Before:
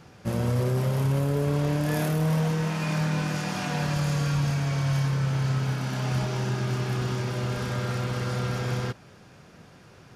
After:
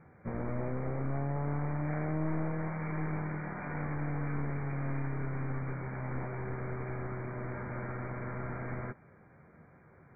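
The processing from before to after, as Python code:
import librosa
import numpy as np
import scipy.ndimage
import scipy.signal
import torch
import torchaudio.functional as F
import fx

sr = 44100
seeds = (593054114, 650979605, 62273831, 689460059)

y = np.minimum(x, 2.0 * 10.0 ** (-28.5 / 20.0) - x)
y = fx.brickwall_lowpass(y, sr, high_hz=2400.0)
y = fx.doubler(y, sr, ms=13.0, db=-11)
y = y * librosa.db_to_amplitude(-7.5)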